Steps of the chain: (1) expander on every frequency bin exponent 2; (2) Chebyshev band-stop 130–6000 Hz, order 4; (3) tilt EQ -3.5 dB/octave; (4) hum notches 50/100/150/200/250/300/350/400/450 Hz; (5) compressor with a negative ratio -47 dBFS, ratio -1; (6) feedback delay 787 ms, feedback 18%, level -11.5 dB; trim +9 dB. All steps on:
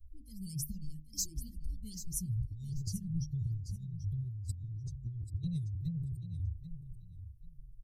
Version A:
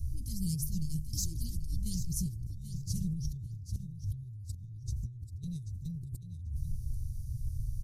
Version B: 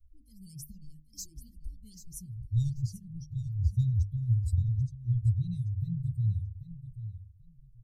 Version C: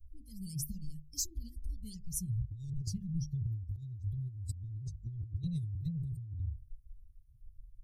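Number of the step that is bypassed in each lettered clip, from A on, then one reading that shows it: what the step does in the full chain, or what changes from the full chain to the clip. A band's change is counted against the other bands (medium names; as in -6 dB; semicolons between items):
1, momentary loudness spread change -6 LU; 5, crest factor change -2.0 dB; 6, momentary loudness spread change -5 LU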